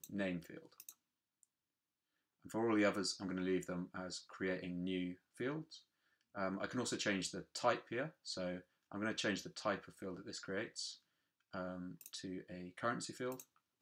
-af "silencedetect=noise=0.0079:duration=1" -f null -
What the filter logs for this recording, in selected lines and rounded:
silence_start: 0.89
silence_end: 2.46 | silence_duration: 1.57